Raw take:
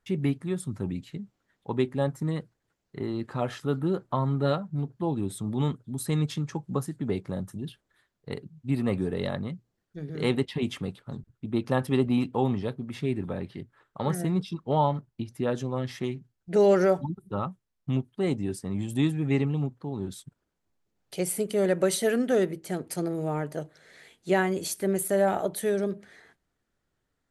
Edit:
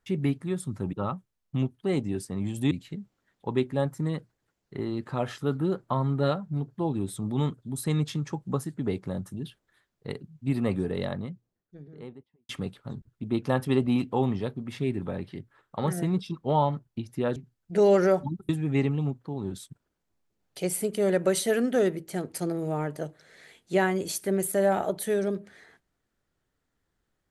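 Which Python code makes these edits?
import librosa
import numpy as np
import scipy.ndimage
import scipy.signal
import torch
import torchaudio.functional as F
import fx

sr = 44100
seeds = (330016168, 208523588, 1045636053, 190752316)

y = fx.studio_fade_out(x, sr, start_s=9.01, length_s=1.7)
y = fx.edit(y, sr, fx.cut(start_s=15.58, length_s=0.56),
    fx.move(start_s=17.27, length_s=1.78, to_s=0.93), tone=tone)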